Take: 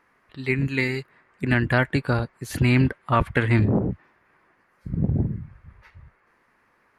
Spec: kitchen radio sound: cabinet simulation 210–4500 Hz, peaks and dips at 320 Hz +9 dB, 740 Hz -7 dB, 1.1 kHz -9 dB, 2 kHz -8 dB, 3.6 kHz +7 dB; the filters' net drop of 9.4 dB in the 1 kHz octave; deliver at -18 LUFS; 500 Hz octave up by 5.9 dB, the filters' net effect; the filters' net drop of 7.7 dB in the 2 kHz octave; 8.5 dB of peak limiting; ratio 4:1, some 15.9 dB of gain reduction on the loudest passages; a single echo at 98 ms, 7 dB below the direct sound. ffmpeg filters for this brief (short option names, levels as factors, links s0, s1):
-af "equalizer=f=500:t=o:g=8,equalizer=f=1000:t=o:g=-6,equalizer=f=2000:t=o:g=-3.5,acompressor=threshold=0.02:ratio=4,alimiter=level_in=1.58:limit=0.0631:level=0:latency=1,volume=0.631,highpass=210,equalizer=f=320:t=q:w=4:g=9,equalizer=f=740:t=q:w=4:g=-7,equalizer=f=1100:t=q:w=4:g=-9,equalizer=f=2000:t=q:w=4:g=-8,equalizer=f=3600:t=q:w=4:g=7,lowpass=f=4500:w=0.5412,lowpass=f=4500:w=1.3066,aecho=1:1:98:0.447,volume=12.6"